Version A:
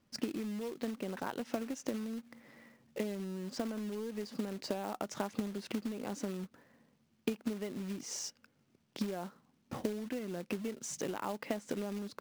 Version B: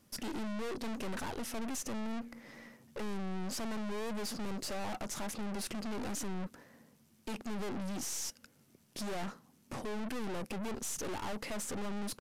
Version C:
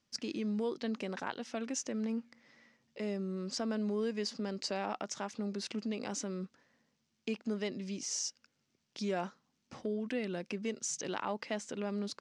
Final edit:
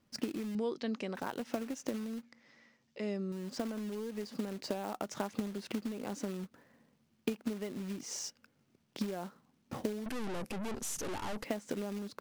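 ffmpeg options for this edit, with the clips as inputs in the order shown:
-filter_complex "[2:a]asplit=2[a][b];[0:a]asplit=4[c][d][e][f];[c]atrim=end=0.552[g];[a]atrim=start=0.548:end=1.152[h];[d]atrim=start=1.148:end=2.232[i];[b]atrim=start=2.228:end=3.322[j];[e]atrim=start=3.318:end=10.062[k];[1:a]atrim=start=10.058:end=11.442[l];[f]atrim=start=11.438[m];[g][h]acrossfade=d=0.004:c1=hsin:c2=hsin[n];[n][i]acrossfade=d=0.004:c1=hsin:c2=hsin[o];[o][j]acrossfade=d=0.004:c1=hsin:c2=hsin[p];[p][k]acrossfade=d=0.004:c1=hsin:c2=hsin[q];[q][l]acrossfade=d=0.004:c1=hsin:c2=hsin[r];[r][m]acrossfade=d=0.004:c1=hsin:c2=hsin"

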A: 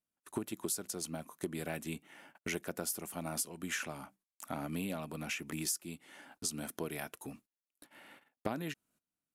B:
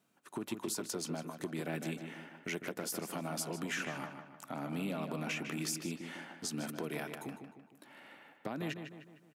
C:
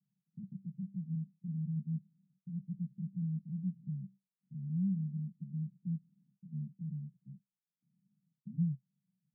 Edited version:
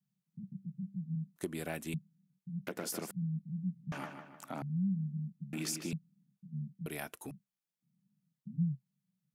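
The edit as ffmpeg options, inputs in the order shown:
-filter_complex "[0:a]asplit=2[a][b];[1:a]asplit=3[c][d][e];[2:a]asplit=6[f][g][h][i][j][k];[f]atrim=end=1.362[l];[a]atrim=start=1.358:end=1.942[m];[g]atrim=start=1.938:end=2.672[n];[c]atrim=start=2.668:end=3.112[o];[h]atrim=start=3.108:end=3.922[p];[d]atrim=start=3.918:end=4.622[q];[i]atrim=start=4.618:end=5.532[r];[e]atrim=start=5.528:end=5.932[s];[j]atrim=start=5.928:end=6.862[t];[b]atrim=start=6.858:end=7.312[u];[k]atrim=start=7.308[v];[l][m]acrossfade=d=0.004:c1=hsin:c2=hsin[w];[w][n]acrossfade=d=0.004:c1=hsin:c2=hsin[x];[x][o]acrossfade=d=0.004:c1=hsin:c2=hsin[y];[y][p]acrossfade=d=0.004:c1=hsin:c2=hsin[z];[z][q]acrossfade=d=0.004:c1=hsin:c2=hsin[aa];[aa][r]acrossfade=d=0.004:c1=hsin:c2=hsin[ab];[ab][s]acrossfade=d=0.004:c1=hsin:c2=hsin[ac];[ac][t]acrossfade=d=0.004:c1=hsin:c2=hsin[ad];[ad][u]acrossfade=d=0.004:c1=hsin:c2=hsin[ae];[ae][v]acrossfade=d=0.004:c1=hsin:c2=hsin"

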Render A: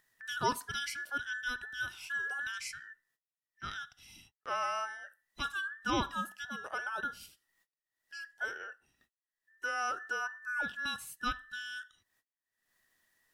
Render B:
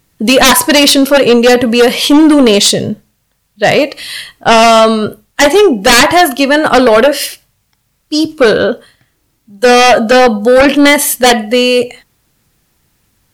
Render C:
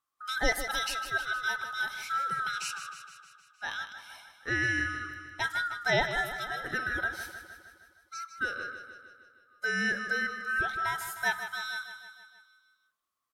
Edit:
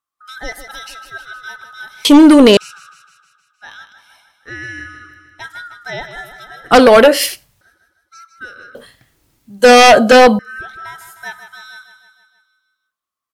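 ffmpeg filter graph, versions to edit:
-filter_complex "[1:a]asplit=3[a][b][c];[2:a]asplit=4[d][e][f][g];[d]atrim=end=2.052[h];[a]atrim=start=2.048:end=2.572[i];[e]atrim=start=2.568:end=6.712[j];[b]atrim=start=6.708:end=7.612[k];[f]atrim=start=7.608:end=8.752[l];[c]atrim=start=8.748:end=10.392[m];[g]atrim=start=10.388[n];[h][i]acrossfade=d=0.004:c1=hsin:c2=hsin[o];[o][j]acrossfade=d=0.004:c1=hsin:c2=hsin[p];[p][k]acrossfade=d=0.004:c1=hsin:c2=hsin[q];[q][l]acrossfade=d=0.004:c1=hsin:c2=hsin[r];[r][m]acrossfade=d=0.004:c1=hsin:c2=hsin[s];[s][n]acrossfade=d=0.004:c1=hsin:c2=hsin"

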